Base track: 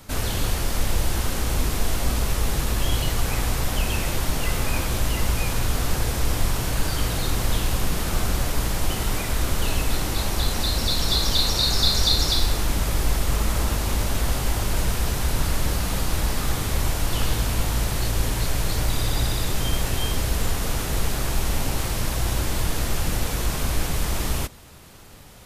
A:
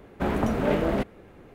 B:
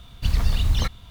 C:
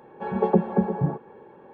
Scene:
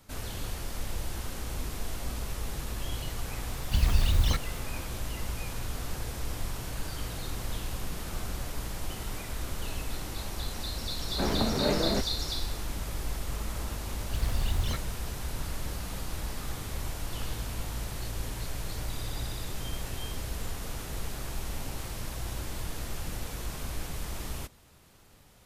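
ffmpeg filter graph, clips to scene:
ffmpeg -i bed.wav -i cue0.wav -i cue1.wav -filter_complex "[2:a]asplit=2[link_01][link_02];[0:a]volume=-12dB[link_03];[link_01]highshelf=frequency=8500:gain=5.5[link_04];[link_02]dynaudnorm=framelen=180:gausssize=3:maxgain=11.5dB[link_05];[link_04]atrim=end=1.1,asetpts=PTS-STARTPTS,volume=-3.5dB,afade=type=in:duration=0.004:curve=hsin,afade=type=out:start_time=1.096:duration=0.004:curve=hsin,adelay=153909S[link_06];[1:a]atrim=end=1.54,asetpts=PTS-STARTPTS,volume=-4dB,afade=type=in:duration=0.004:curve=hsin,afade=type=out:start_time=1.536:duration=0.004:curve=hsin,adelay=484218S[link_07];[link_05]atrim=end=1.1,asetpts=PTS-STARTPTS,volume=-15.5dB,afade=type=in:duration=0.004:curve=hsin,afade=type=out:start_time=1.096:duration=0.004:curve=hsin,adelay=13890[link_08];[link_03][link_06][link_07][link_08]amix=inputs=4:normalize=0" out.wav

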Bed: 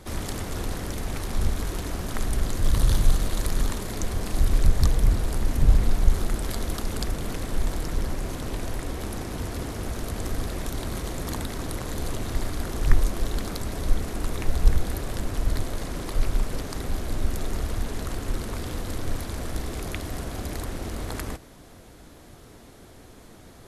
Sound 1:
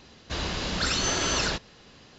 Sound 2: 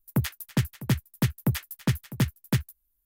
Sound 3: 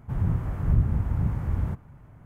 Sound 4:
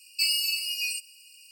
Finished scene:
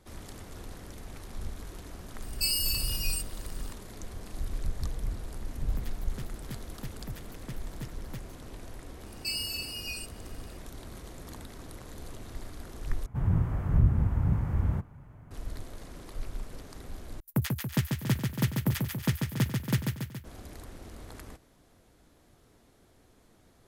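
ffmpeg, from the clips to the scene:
ffmpeg -i bed.wav -i cue0.wav -i cue1.wav -i cue2.wav -i cue3.wav -filter_complex "[4:a]asplit=2[link_01][link_02];[2:a]asplit=2[link_03][link_04];[0:a]volume=-13.5dB[link_05];[link_01]crystalizer=i=6:c=0[link_06];[link_02]acontrast=77[link_07];[link_04]aecho=1:1:140|280|420|560|700|840|980|1120:0.596|0.345|0.2|0.116|0.0674|0.0391|0.0227|0.0132[link_08];[link_05]asplit=3[link_09][link_10][link_11];[link_09]atrim=end=13.064[link_12];[3:a]atrim=end=2.25,asetpts=PTS-STARTPTS,volume=-1dB[link_13];[link_10]atrim=start=15.306:end=17.204[link_14];[link_08]atrim=end=3.05,asetpts=PTS-STARTPTS,volume=-3dB[link_15];[link_11]atrim=start=20.246[link_16];[link_06]atrim=end=1.51,asetpts=PTS-STARTPTS,volume=-17dB,afade=type=in:duration=0.004:curve=hsin,afade=type=out:start_time=1.506:duration=0.004:curve=hsin,adelay=2220[link_17];[link_03]atrim=end=3.05,asetpts=PTS-STARTPTS,volume=-17.5dB,afade=type=in:duration=0.004:curve=hsin,afade=type=out:start_time=3.046:duration=0.004:curve=hsin,adelay=247401S[link_18];[link_07]atrim=end=1.51,asetpts=PTS-STARTPTS,volume=-15dB,afade=type=in:duration=0.004:curve=hsin,afade=type=out:start_time=1.506:duration=0.004:curve=hsin,adelay=399546S[link_19];[link_12][link_13]acrossfade=duration=0.004:curve1=hsin:curve2=hsin[link_20];[link_20][link_14]acrossfade=duration=0.004:curve1=hsin:curve2=hsin[link_21];[link_21][link_15]acrossfade=duration=0.004:curve1=hsin:curve2=hsin[link_22];[link_22][link_16]acrossfade=duration=0.004:curve1=hsin:curve2=hsin[link_23];[link_23][link_17][link_18][link_19]amix=inputs=4:normalize=0" out.wav

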